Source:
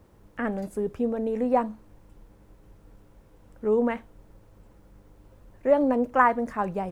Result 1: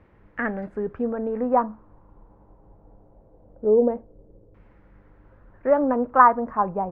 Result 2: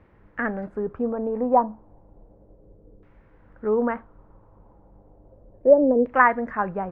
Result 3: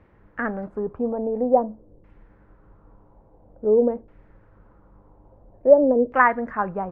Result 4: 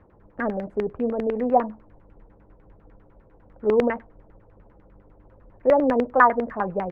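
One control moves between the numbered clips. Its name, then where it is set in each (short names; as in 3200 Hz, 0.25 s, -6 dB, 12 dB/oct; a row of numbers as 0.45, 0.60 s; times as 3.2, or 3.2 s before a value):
LFO low-pass, rate: 0.22, 0.33, 0.49, 10 Hz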